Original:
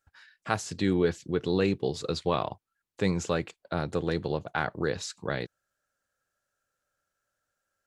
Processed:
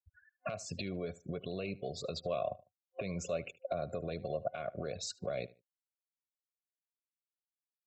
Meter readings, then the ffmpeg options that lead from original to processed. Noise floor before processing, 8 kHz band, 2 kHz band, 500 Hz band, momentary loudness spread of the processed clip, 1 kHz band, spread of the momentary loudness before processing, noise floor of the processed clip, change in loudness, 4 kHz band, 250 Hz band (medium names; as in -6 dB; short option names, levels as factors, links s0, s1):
-84 dBFS, -6.0 dB, -13.0 dB, -7.5 dB, 6 LU, -10.0 dB, 8 LU, under -85 dBFS, -9.5 dB, -8.0 dB, -13.5 dB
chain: -filter_complex "[0:a]afftfilt=real='re*gte(hypot(re,im),0.0112)':imag='im*gte(hypot(re,im),0.0112)':win_size=1024:overlap=0.75,acompressor=threshold=0.0141:ratio=6,bandreject=f=1300:w=16,alimiter=level_in=2.66:limit=0.0631:level=0:latency=1:release=75,volume=0.376,superequalizer=6b=0.501:8b=3.98:9b=0.251:11b=0.355:12b=2.24,asplit=2[s0][s1];[s1]adelay=75,lowpass=f=3400:p=1,volume=0.112,asplit=2[s2][s3];[s3]adelay=75,lowpass=f=3400:p=1,volume=0.24[s4];[s0][s2][s4]amix=inputs=3:normalize=0,volume=1.5"